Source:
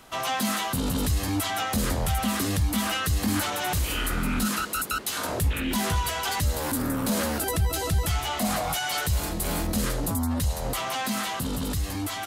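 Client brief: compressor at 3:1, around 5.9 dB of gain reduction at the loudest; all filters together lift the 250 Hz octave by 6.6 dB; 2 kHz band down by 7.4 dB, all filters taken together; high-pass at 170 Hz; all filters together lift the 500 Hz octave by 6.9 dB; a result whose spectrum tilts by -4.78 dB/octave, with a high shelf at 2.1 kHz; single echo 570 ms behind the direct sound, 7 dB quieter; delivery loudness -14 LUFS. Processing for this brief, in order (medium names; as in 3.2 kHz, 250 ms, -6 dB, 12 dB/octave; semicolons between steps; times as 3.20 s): high-pass 170 Hz; peaking EQ 250 Hz +7.5 dB; peaking EQ 500 Hz +7.5 dB; peaking EQ 2 kHz -8.5 dB; treble shelf 2.1 kHz -4.5 dB; compression 3:1, threshold -25 dBFS; delay 570 ms -7 dB; trim +14 dB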